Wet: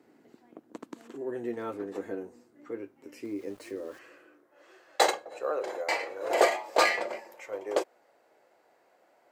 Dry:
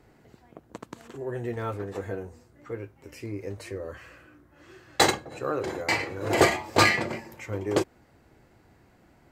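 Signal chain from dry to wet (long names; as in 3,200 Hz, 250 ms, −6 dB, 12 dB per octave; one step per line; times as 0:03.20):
high-pass filter sweep 270 Hz → 560 Hz, 0:03.77–0:04.69
0:03.23–0:03.99: centre clipping without the shift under −47 dBFS
level −5.5 dB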